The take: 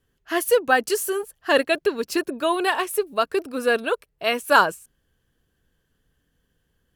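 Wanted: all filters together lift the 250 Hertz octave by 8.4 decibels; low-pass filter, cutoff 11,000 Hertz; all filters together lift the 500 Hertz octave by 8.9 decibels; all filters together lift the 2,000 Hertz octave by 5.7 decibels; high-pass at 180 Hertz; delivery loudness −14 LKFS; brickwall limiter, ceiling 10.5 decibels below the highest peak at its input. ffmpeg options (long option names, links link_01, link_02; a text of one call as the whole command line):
ffmpeg -i in.wav -af "highpass=180,lowpass=11000,equalizer=frequency=250:width_type=o:gain=8.5,equalizer=frequency=500:width_type=o:gain=8,equalizer=frequency=2000:width_type=o:gain=7,volume=5dB,alimiter=limit=-3dB:level=0:latency=1" out.wav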